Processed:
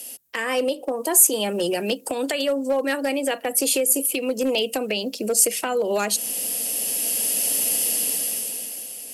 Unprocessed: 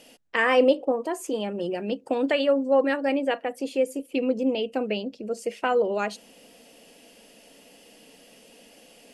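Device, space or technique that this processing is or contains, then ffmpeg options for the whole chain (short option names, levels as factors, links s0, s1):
FM broadcast chain: -filter_complex "[0:a]highpass=42,dynaudnorm=f=120:g=17:m=5.62,acrossover=split=210|460[s0][s1][s2];[s0]acompressor=threshold=0.0112:ratio=4[s3];[s1]acompressor=threshold=0.0398:ratio=4[s4];[s2]acompressor=threshold=0.0708:ratio=4[s5];[s3][s4][s5]amix=inputs=3:normalize=0,aemphasis=mode=production:type=50fm,alimiter=limit=0.178:level=0:latency=1:release=329,asoftclip=type=hard:threshold=0.141,lowpass=f=15000:w=0.5412,lowpass=f=15000:w=1.3066,aemphasis=mode=production:type=50fm,volume=1.19"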